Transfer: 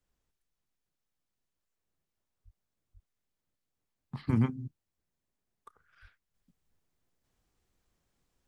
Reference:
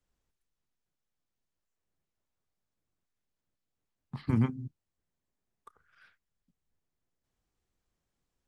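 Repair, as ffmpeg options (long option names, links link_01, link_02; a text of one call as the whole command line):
ffmpeg -i in.wav -filter_complex "[0:a]asplit=3[link_01][link_02][link_03];[link_01]afade=type=out:start_time=2.44:duration=0.02[link_04];[link_02]highpass=frequency=140:width=0.5412,highpass=frequency=140:width=1.3066,afade=type=in:start_time=2.44:duration=0.02,afade=type=out:start_time=2.56:duration=0.02[link_05];[link_03]afade=type=in:start_time=2.56:duration=0.02[link_06];[link_04][link_05][link_06]amix=inputs=3:normalize=0,asplit=3[link_07][link_08][link_09];[link_07]afade=type=out:start_time=2.93:duration=0.02[link_10];[link_08]highpass=frequency=140:width=0.5412,highpass=frequency=140:width=1.3066,afade=type=in:start_time=2.93:duration=0.02,afade=type=out:start_time=3.05:duration=0.02[link_11];[link_09]afade=type=in:start_time=3.05:duration=0.02[link_12];[link_10][link_11][link_12]amix=inputs=3:normalize=0,asplit=3[link_13][link_14][link_15];[link_13]afade=type=out:start_time=6.01:duration=0.02[link_16];[link_14]highpass=frequency=140:width=0.5412,highpass=frequency=140:width=1.3066,afade=type=in:start_time=6.01:duration=0.02,afade=type=out:start_time=6.13:duration=0.02[link_17];[link_15]afade=type=in:start_time=6.13:duration=0.02[link_18];[link_16][link_17][link_18]amix=inputs=3:normalize=0,asetnsamples=nb_out_samples=441:pad=0,asendcmd='6.34 volume volume -5.5dB',volume=0dB" out.wav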